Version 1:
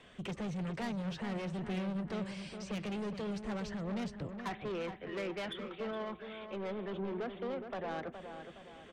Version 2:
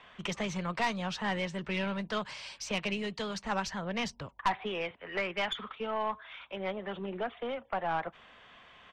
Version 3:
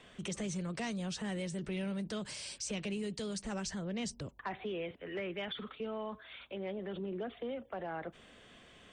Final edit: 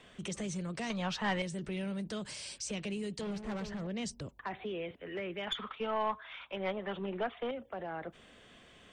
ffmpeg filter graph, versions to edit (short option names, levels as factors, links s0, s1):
-filter_complex "[1:a]asplit=2[s0][s1];[2:a]asplit=4[s2][s3][s4][s5];[s2]atrim=end=0.902[s6];[s0]atrim=start=0.898:end=1.422[s7];[s3]atrim=start=1.418:end=3.212[s8];[0:a]atrim=start=3.208:end=3.872[s9];[s4]atrim=start=3.868:end=5.472[s10];[s1]atrim=start=5.468:end=7.512[s11];[s5]atrim=start=7.508[s12];[s6][s7]acrossfade=d=0.004:c1=hsin:c2=hsin[s13];[s13][s8]acrossfade=d=0.004:c1=hsin:c2=hsin[s14];[s14][s9]acrossfade=d=0.004:c1=hsin:c2=hsin[s15];[s15][s10]acrossfade=d=0.004:c1=hsin:c2=hsin[s16];[s16][s11]acrossfade=d=0.004:c1=hsin:c2=hsin[s17];[s17][s12]acrossfade=d=0.004:c1=hsin:c2=hsin"